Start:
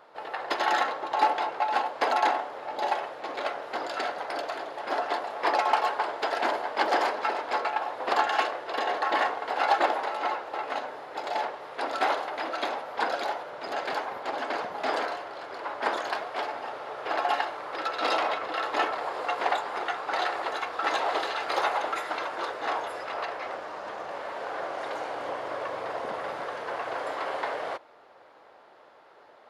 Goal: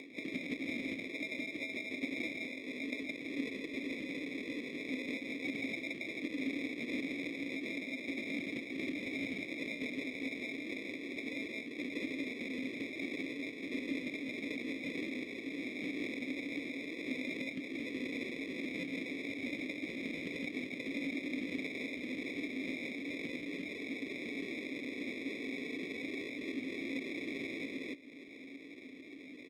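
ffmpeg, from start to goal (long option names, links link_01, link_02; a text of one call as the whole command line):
ffmpeg -i in.wav -filter_complex "[0:a]bass=frequency=250:gain=-12,treble=frequency=4000:gain=-12,asplit=2[link_01][link_02];[link_02]aecho=0:1:93.29|166.2:0.501|0.891[link_03];[link_01][link_03]amix=inputs=2:normalize=0,acompressor=threshold=-34dB:ratio=5,flanger=delay=0.1:depth=9.2:regen=-36:speed=0.34:shape=triangular,acrusher=samples=22:mix=1:aa=0.000001,asetrate=33038,aresample=44100,atempo=1.33484,asplit=3[link_04][link_05][link_06];[link_04]bandpass=frequency=270:width_type=q:width=8,volume=0dB[link_07];[link_05]bandpass=frequency=2290:width_type=q:width=8,volume=-6dB[link_08];[link_06]bandpass=frequency=3010:width_type=q:width=8,volume=-9dB[link_09];[link_07][link_08][link_09]amix=inputs=3:normalize=0,acompressor=mode=upward:threshold=-59dB:ratio=2.5,volume=15.5dB" out.wav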